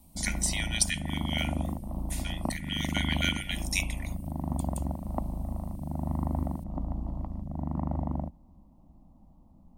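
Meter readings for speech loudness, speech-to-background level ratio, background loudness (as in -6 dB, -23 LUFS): -32.0 LUFS, 2.5 dB, -34.5 LUFS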